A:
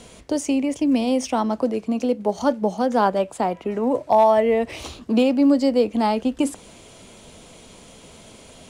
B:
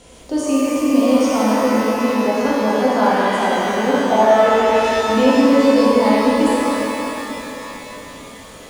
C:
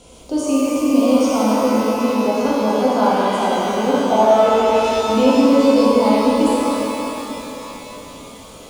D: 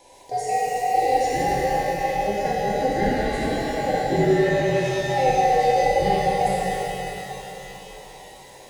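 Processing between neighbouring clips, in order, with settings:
reverb with rising layers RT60 3.7 s, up +12 semitones, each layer −8 dB, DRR −7.5 dB; level −3.5 dB
parametric band 1,800 Hz −14.5 dB 0.31 octaves
frequency inversion band by band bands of 1,000 Hz; level −6 dB

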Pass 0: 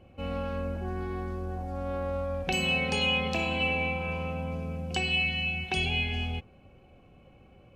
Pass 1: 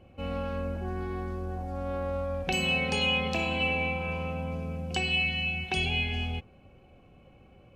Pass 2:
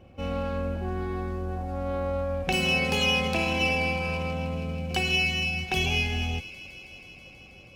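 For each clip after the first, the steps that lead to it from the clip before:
no processing that can be heard
delay with a high-pass on its return 161 ms, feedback 84%, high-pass 2,600 Hz, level −15.5 dB; windowed peak hold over 3 samples; level +3 dB

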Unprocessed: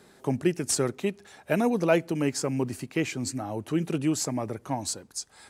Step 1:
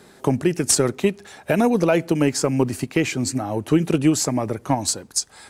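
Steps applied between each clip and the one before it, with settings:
transient designer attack +7 dB, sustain +2 dB
brickwall limiter −13.5 dBFS, peak gain reduction 9.5 dB
level +6.5 dB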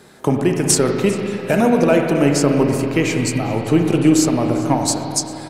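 repeating echo 398 ms, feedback 45%, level −19.5 dB
on a send at −2 dB: convolution reverb RT60 2.9 s, pre-delay 35 ms
on the sum: level +2 dB

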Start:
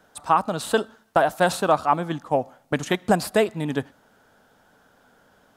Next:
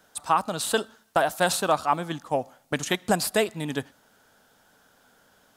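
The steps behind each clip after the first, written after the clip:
high-shelf EQ 2,500 Hz +10 dB
level −4.5 dB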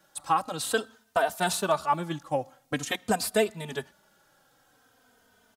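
barber-pole flanger 3.1 ms −0.48 Hz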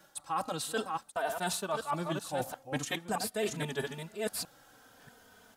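delay that plays each chunk backwards 636 ms, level −8.5 dB
reversed playback
downward compressor 6 to 1, threshold −35 dBFS, peak gain reduction 15.5 dB
reversed playback
level +4 dB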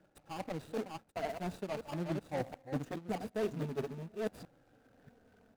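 running median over 41 samples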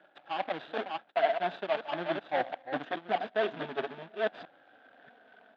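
loudspeaker in its box 440–3,500 Hz, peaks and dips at 470 Hz −6 dB, 690 Hz +6 dB, 1,600 Hz +7 dB, 3,400 Hz +9 dB
level +8 dB

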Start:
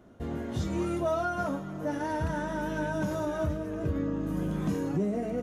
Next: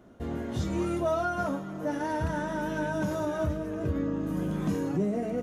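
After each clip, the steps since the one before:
mains-hum notches 50/100/150 Hz
level +1 dB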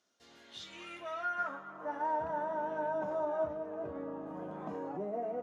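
band-pass filter sweep 5,300 Hz → 780 Hz, 0:00.16–0:02.21
level +2 dB

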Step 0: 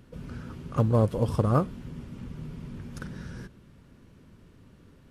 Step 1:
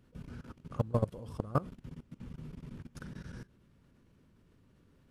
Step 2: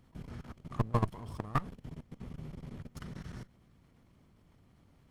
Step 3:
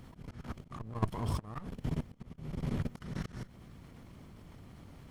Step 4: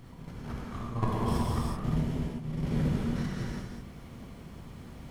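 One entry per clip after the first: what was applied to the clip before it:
output level in coarse steps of 20 dB; level −4.5 dB
lower of the sound and its delayed copy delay 0.93 ms; level +2 dB
volume swells 354 ms; level +11.5 dB
reverb whose tail is shaped and stops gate 410 ms flat, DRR −6 dB

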